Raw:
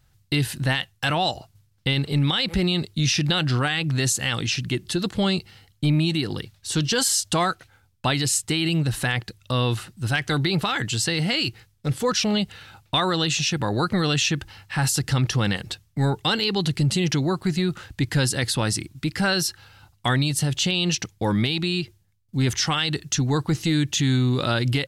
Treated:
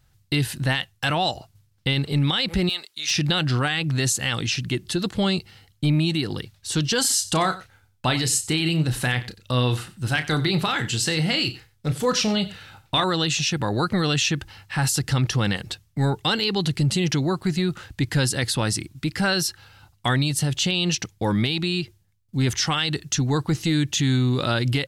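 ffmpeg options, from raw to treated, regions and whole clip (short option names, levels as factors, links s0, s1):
-filter_complex "[0:a]asettb=1/sr,asplit=3[s0][s1][s2];[s0]atrim=end=2.694[s3];[s1]atrim=start=2.69:end=3.11,asetpts=PTS-STARTPTS,afade=t=in:d=0.004:c=qsin,afade=t=out:st=0.416:d=0.004:c=qsin,highpass=1000,asoftclip=type=hard:threshold=0.15[s4];[s2]atrim=start=3.106[s5];[s3][s4]acrossfade=d=0.004:c1=hsin:c2=qsin[s6];[s6][s5]acrossfade=d=0.004:c1=qsin:c2=hsin,asettb=1/sr,asplit=3[s7][s8][s9];[s7]atrim=end=7.014[s10];[s8]atrim=start=7.01:end=13.04,asetpts=PTS-STARTPTS,afade=t=in:d=0.004:c=qsin,afade=t=out:st=6.026:d=0.004:c=qsin,asplit=2[s11][s12];[s12]adelay=32,volume=0.316[s13];[s11][s13]amix=inputs=2:normalize=0,atrim=end_sample=265923,aecho=1:1:92:0.141,atrim=end_sample=265923[s14];[s9]atrim=start=13.036[s15];[s10][s14]acrossfade=d=0.004:c1=hsin:c2=qsin[s16];[s16][s15]acrossfade=d=0.004:c1=qsin:c2=hsin"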